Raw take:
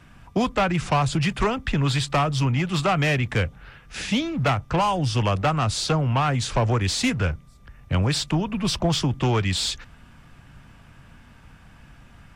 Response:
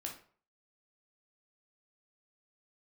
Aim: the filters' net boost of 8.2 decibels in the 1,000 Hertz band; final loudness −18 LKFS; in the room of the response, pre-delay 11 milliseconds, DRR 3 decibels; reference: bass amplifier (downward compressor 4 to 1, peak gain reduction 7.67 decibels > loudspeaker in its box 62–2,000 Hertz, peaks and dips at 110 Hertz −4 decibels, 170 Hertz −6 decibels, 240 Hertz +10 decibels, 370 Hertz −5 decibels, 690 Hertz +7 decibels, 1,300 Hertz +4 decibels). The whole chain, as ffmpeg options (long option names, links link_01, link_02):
-filter_complex "[0:a]equalizer=frequency=1000:width_type=o:gain=6.5,asplit=2[link_01][link_02];[1:a]atrim=start_sample=2205,adelay=11[link_03];[link_02][link_03]afir=irnorm=-1:irlink=0,volume=-1.5dB[link_04];[link_01][link_04]amix=inputs=2:normalize=0,acompressor=threshold=-19dB:ratio=4,highpass=frequency=62:width=0.5412,highpass=frequency=62:width=1.3066,equalizer=frequency=110:width_type=q:width=4:gain=-4,equalizer=frequency=170:width_type=q:width=4:gain=-6,equalizer=frequency=240:width_type=q:width=4:gain=10,equalizer=frequency=370:width_type=q:width=4:gain=-5,equalizer=frequency=690:width_type=q:width=4:gain=7,equalizer=frequency=1300:width_type=q:width=4:gain=4,lowpass=frequency=2000:width=0.5412,lowpass=frequency=2000:width=1.3066,volume=5dB"